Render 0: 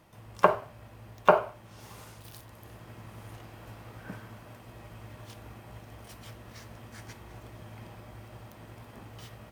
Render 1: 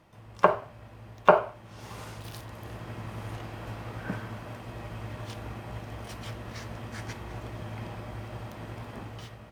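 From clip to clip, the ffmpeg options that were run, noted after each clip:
-af "highshelf=f=8700:g=-11.5,dynaudnorm=f=120:g=9:m=2.51"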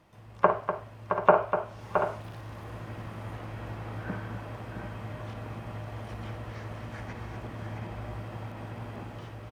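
-filter_complex "[0:a]acrossover=split=2600[s0][s1];[s1]acompressor=threshold=0.00112:ratio=4:attack=1:release=60[s2];[s0][s2]amix=inputs=2:normalize=0,aecho=1:1:56|246|668|735:0.266|0.355|0.422|0.282,volume=0.841"

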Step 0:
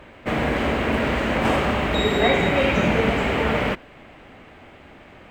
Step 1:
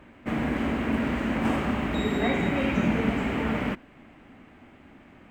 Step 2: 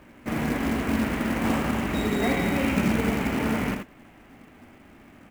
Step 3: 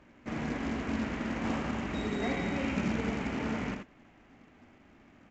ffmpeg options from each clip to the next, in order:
-af "equalizer=f=250:t=o:w=1:g=8,equalizer=f=500:t=o:w=1:g=-5,equalizer=f=4000:t=o:w=1:g=-5,volume=0.447"
-af "aecho=1:1:81:0.531,acrusher=bits=4:mode=log:mix=0:aa=0.000001"
-af "aresample=16000,aresample=44100,volume=0.398"

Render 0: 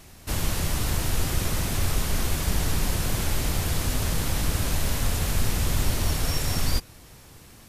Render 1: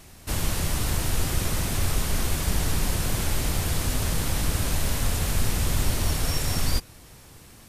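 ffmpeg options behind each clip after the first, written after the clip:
-af "equalizer=f=8900:w=4:g=2.5"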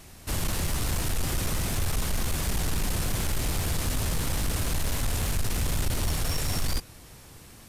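-af "asoftclip=type=tanh:threshold=0.0944"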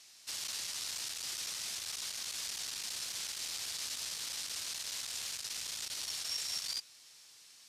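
-af "bandpass=f=5000:t=q:w=1.4:csg=0"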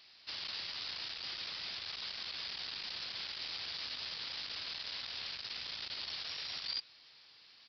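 -af "aresample=11025,aresample=44100,volume=1.19"

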